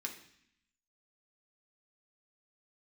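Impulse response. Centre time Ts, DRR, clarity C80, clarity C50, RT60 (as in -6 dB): 16 ms, 1.0 dB, 12.0 dB, 9.5 dB, 0.65 s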